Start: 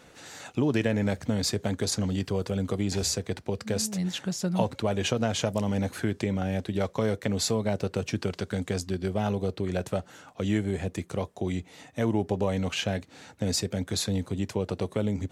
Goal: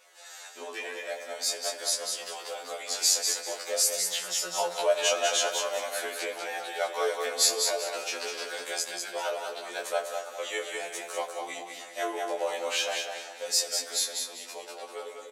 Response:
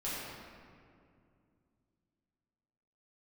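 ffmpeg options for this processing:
-filter_complex "[0:a]highpass=f=540:w=0.5412,highpass=f=540:w=1.3066,highshelf=f=6400:g=9,dynaudnorm=f=640:g=7:m=2.24,flanger=delay=17:depth=3.4:speed=0.45,aecho=1:1:197|394|591|788:0.562|0.157|0.0441|0.0123,asplit=2[s0][s1];[1:a]atrim=start_sample=2205[s2];[s1][s2]afir=irnorm=-1:irlink=0,volume=0.224[s3];[s0][s3]amix=inputs=2:normalize=0,afftfilt=real='re*2*eq(mod(b,4),0)':imag='im*2*eq(mod(b,4),0)':win_size=2048:overlap=0.75"

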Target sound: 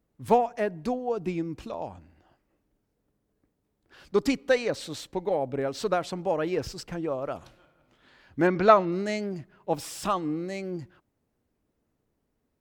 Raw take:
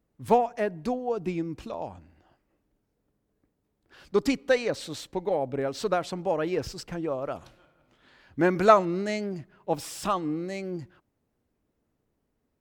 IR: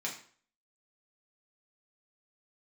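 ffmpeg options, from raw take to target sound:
-filter_complex "[0:a]asettb=1/sr,asplit=3[s0][s1][s2];[s0]atrim=end=8.474[s3];[s1]atrim=start=8.47:end=8.92,asetpts=PTS-STARTPTS,afade=t=in:d=0.004:c=qsin,afade=t=out:st=0.446:d=0.004:c=qsin,lowpass=f=5000:w=0.5412,lowpass=f=5000:w=1.3066[s4];[s2]atrim=start=8.916[s5];[s3][s4]acrossfade=d=0.004:c1=hsin:c2=qsin[s6];[s6][s5]acrossfade=d=0.004:c1=qsin:c2=hsin"

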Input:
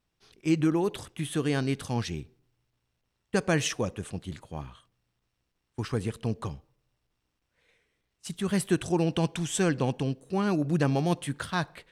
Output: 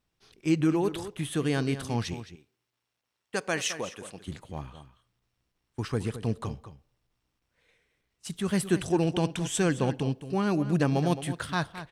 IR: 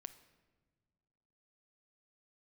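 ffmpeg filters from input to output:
-filter_complex "[0:a]asettb=1/sr,asplit=3[s0][s1][s2];[s0]atrim=end=2.144[s3];[s1]atrim=start=2.14:end=4.28,asetpts=PTS-STARTPTS,afade=t=in:d=0.004:c=qsin,afade=t=out:st=2.136:d=0.004:c=qsin,highpass=f=620:p=1[s4];[s2]atrim=start=4.276[s5];[s3][s4]acrossfade=d=0.004:c1=hsin:c2=qsin[s6];[s6][s5]acrossfade=d=0.004:c1=qsin:c2=hsin,asplit=2[s7][s8];[s8]adelay=215.7,volume=0.251,highshelf=f=4000:g=-4.85[s9];[s7][s9]amix=inputs=2:normalize=0"

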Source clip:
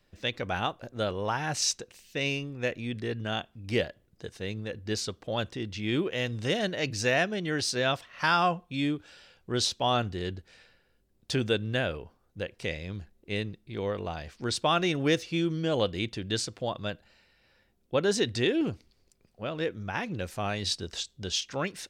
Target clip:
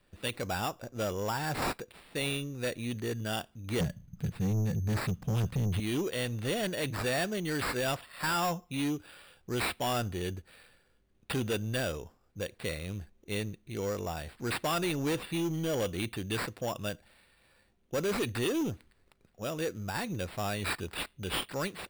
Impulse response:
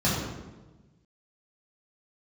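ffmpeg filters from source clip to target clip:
-filter_complex "[0:a]asettb=1/sr,asplit=3[s0][s1][s2];[s0]atrim=end=3.804[s3];[s1]atrim=start=3.8:end=5.8,asetpts=PTS-STARTPTS,afade=t=in:d=0.004:c=qsin,afade=t=out:st=1.996:d=0.004:c=qsin,lowshelf=f=250:t=q:w=3:g=13[s4];[s2]atrim=start=5.796[s5];[s3][s4]acrossfade=d=0.004:c1=hsin:c2=qsin[s6];[s6][s5]acrossfade=d=0.004:c1=qsin:c2=hsin,acrusher=samples=7:mix=1:aa=0.000001,asoftclip=type=tanh:threshold=0.0501"

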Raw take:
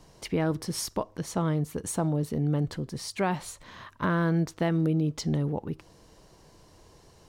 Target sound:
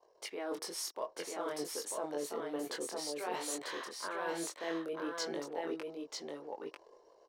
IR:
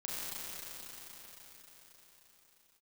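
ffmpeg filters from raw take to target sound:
-af "highpass=f=400:w=0.5412,highpass=f=400:w=1.3066,anlmdn=0.000631,areverse,acompressor=threshold=0.00794:ratio=8,areverse,flanger=delay=19.5:depth=4.8:speed=0.53,aecho=1:1:944:0.668,volume=2.66"

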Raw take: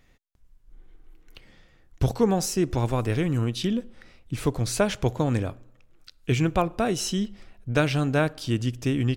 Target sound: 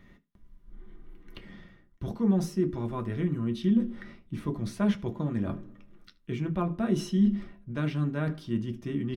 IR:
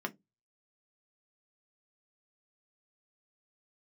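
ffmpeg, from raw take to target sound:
-filter_complex "[0:a]lowshelf=f=230:g=9,areverse,acompressor=threshold=0.0282:ratio=6,areverse,aecho=1:1:76:0.0708[s0];[1:a]atrim=start_sample=2205[s1];[s0][s1]afir=irnorm=-1:irlink=0"

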